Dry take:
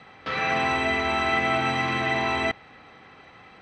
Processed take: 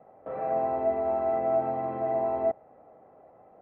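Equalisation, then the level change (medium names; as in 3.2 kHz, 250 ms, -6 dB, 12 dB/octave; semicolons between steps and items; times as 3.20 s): resonant low-pass 630 Hz, resonance Q 4.4; distance through air 270 m; bass shelf 250 Hz -8 dB; -5.0 dB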